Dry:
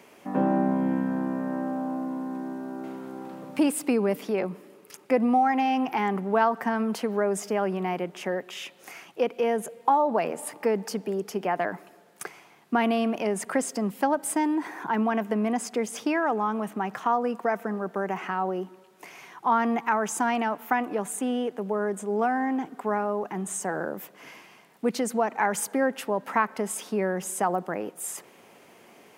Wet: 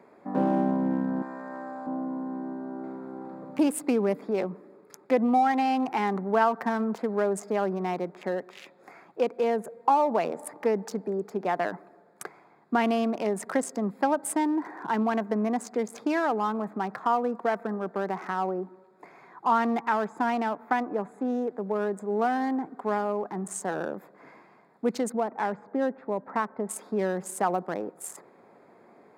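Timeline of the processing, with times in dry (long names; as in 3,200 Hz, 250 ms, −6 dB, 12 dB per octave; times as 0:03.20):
0:01.22–0:01.87: meter weighting curve ITU-R 468
0:19.81–0:21.25: high-shelf EQ 4,300 Hz −12 dB
0:25.12–0:26.69: head-to-tape spacing loss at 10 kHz 38 dB
whole clip: adaptive Wiener filter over 15 samples; low-shelf EQ 90 Hz −7.5 dB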